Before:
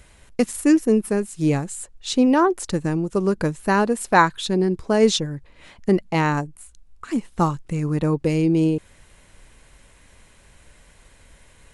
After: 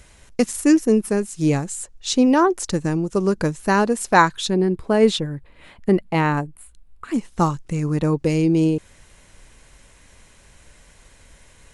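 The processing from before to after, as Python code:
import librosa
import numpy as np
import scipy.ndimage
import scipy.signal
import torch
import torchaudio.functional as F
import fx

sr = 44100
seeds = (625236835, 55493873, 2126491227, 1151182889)

y = fx.peak_eq(x, sr, hz=6000.0, db=fx.steps((0.0, 5.0), (4.5, -10.5), (7.14, 4.5)), octaves=0.69)
y = y * librosa.db_to_amplitude(1.0)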